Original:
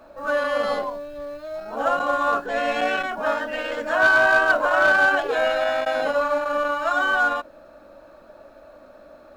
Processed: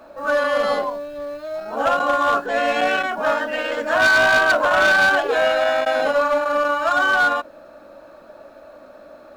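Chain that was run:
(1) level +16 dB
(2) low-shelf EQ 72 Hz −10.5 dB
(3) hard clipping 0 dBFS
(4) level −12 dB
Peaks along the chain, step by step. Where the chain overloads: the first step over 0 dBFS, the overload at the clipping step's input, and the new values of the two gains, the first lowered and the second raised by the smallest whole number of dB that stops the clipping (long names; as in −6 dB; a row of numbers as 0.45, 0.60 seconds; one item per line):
+7.5, +7.5, 0.0, −12.0 dBFS
step 1, 7.5 dB
step 1 +8 dB, step 4 −4 dB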